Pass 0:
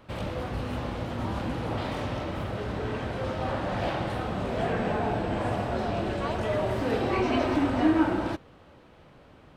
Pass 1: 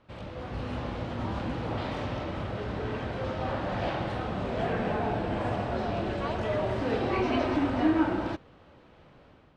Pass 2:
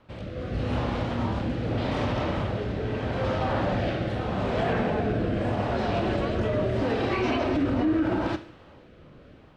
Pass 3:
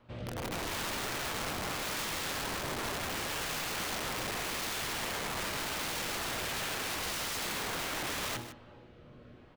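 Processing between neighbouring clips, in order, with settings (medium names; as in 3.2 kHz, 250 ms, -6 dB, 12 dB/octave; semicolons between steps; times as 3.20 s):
low-pass 6 kHz 12 dB/octave; level rider gain up to 7 dB; trim -8.5 dB
Schroeder reverb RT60 0.57 s, combs from 26 ms, DRR 11.5 dB; rotary cabinet horn 0.8 Hz; peak limiter -24 dBFS, peak gain reduction 9.5 dB; trim +7 dB
feedback comb 120 Hz, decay 0.36 s, harmonics all, mix 70%; integer overflow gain 34.5 dB; delay 154 ms -12 dB; trim +3 dB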